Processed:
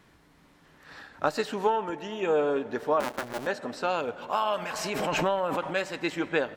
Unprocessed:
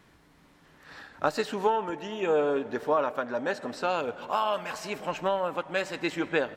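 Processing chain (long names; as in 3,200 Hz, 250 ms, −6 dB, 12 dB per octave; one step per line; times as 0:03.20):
0:03.00–0:03.47: sub-harmonics by changed cycles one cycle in 2, muted
0:04.47–0:05.75: background raised ahead of every attack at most 26 dB per second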